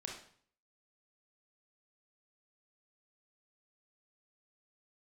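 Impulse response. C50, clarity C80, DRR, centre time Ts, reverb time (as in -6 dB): 4.0 dB, 9.0 dB, -1.0 dB, 35 ms, 0.55 s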